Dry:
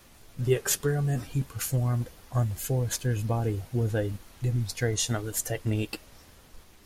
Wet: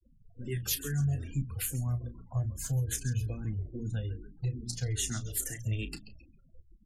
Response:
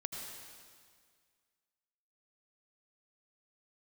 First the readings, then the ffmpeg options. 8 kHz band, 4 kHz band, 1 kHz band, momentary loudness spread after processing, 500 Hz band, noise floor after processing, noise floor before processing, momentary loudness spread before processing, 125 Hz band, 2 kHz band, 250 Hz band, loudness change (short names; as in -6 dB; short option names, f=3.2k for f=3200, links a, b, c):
-4.0 dB, -4.5 dB, -14.0 dB, 6 LU, -15.0 dB, -62 dBFS, -55 dBFS, 6 LU, -4.5 dB, -7.5 dB, -7.0 dB, -5.0 dB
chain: -filter_complex "[0:a]bandreject=f=60:t=h:w=6,bandreject=f=120:t=h:w=6,bandreject=f=180:t=h:w=6,bandreject=f=240:t=h:w=6,bandreject=f=300:t=h:w=6,bandreject=f=360:t=h:w=6,bandreject=f=420:t=h:w=6,asplit=5[a][b][c][d][e];[b]adelay=135,afreqshift=-55,volume=-14dB[f];[c]adelay=270,afreqshift=-110,volume=-21.7dB[g];[d]adelay=405,afreqshift=-165,volume=-29.5dB[h];[e]adelay=540,afreqshift=-220,volume=-37.2dB[i];[a][f][g][h][i]amix=inputs=5:normalize=0,acrossover=split=260|1700|2900[j][k][l][m];[k]acompressor=threshold=-46dB:ratio=16[n];[j][n][l][m]amix=inputs=4:normalize=0,afftfilt=real='re*gte(hypot(re,im),0.00631)':imag='im*gte(hypot(re,im),0.00631)':win_size=1024:overlap=0.75,asplit=2[o][p];[p]adelay=33,volume=-11dB[q];[o][q]amix=inputs=2:normalize=0,asplit=2[r][s];[s]afreqshift=-2.4[t];[r][t]amix=inputs=2:normalize=1"